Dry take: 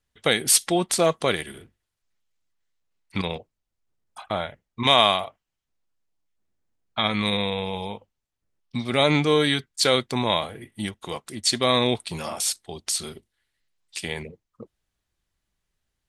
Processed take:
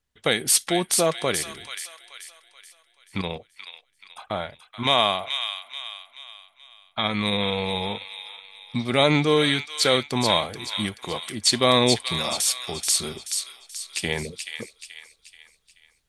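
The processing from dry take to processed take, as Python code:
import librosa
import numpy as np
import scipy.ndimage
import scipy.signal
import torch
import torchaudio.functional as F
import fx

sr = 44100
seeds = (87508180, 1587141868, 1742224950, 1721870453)

y = fx.rider(x, sr, range_db=5, speed_s=2.0)
y = fx.echo_wet_highpass(y, sr, ms=431, feedback_pct=43, hz=1800.0, wet_db=-5.0)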